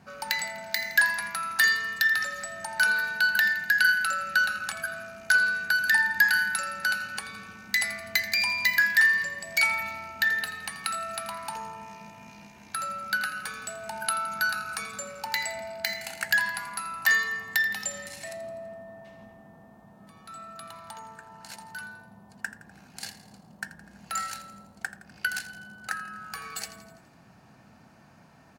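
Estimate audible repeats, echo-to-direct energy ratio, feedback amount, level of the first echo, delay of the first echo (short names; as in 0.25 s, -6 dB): 5, -13.5 dB, 57%, -15.0 dB, 83 ms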